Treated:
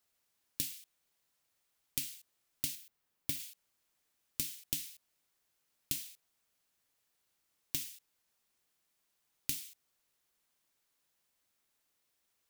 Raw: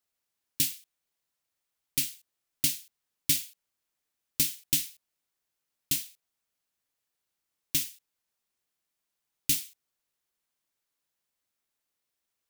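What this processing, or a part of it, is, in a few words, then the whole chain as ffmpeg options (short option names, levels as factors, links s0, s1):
serial compression, leveller first: -filter_complex "[0:a]asettb=1/sr,asplit=3[s0][s1][s2];[s0]atrim=end=2.754[s3];[s1]atrim=start=2.75:end=3.4,asetpts=PTS-STARTPTS,afade=t=in:d=0.004:c=qsin,afade=t=out:st=0.646:d=0.004:c=qsin,equalizer=f=6900:t=o:w=2.7:g=-5.5[s4];[s2]atrim=start=3.396[s5];[s3][s4]acrossfade=d=0.004:c1=hsin:c2=qsin[s6];[s6][s5]acrossfade=d=0.004:c1=qsin:c2=hsin,acompressor=threshold=0.0251:ratio=1.5,acompressor=threshold=0.0126:ratio=6,volume=1.68"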